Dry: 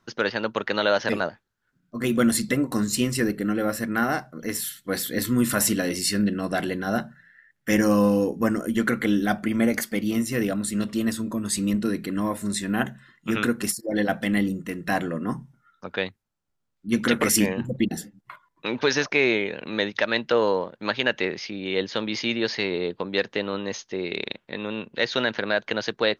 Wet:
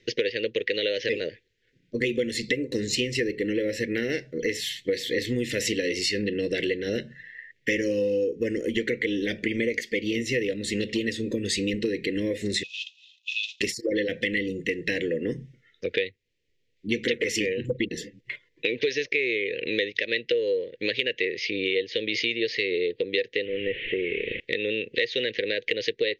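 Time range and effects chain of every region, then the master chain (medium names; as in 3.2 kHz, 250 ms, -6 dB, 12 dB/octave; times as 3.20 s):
12.63–13.61 s: CVSD coder 32 kbps + rippled Chebyshev high-pass 2.5 kHz, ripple 9 dB
23.45–24.40 s: one-bit delta coder 16 kbps, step -34 dBFS + peaking EQ 720 Hz -6.5 dB 2.8 oct
whole clip: FFT filter 120 Hz 0 dB, 200 Hz -8 dB, 490 Hz +11 dB, 730 Hz -26 dB, 1.3 kHz -28 dB, 1.9 kHz +9 dB, 2.8 kHz +9 dB, 6.9 kHz -2 dB, 10 kHz -17 dB; compression 6:1, threshold -30 dBFS; trim +6 dB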